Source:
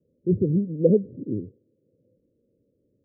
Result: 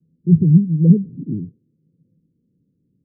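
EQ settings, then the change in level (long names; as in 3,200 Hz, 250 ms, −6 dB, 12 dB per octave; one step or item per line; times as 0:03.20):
transistor ladder low-pass 330 Hz, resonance 25%
parametric band 160 Hz +13.5 dB 0.38 octaves
+7.0 dB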